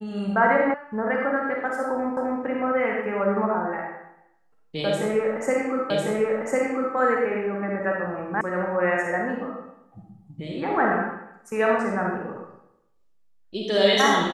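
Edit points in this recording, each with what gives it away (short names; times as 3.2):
0.74 sound cut off
2.17 repeat of the last 0.26 s
5.9 repeat of the last 1.05 s
8.41 sound cut off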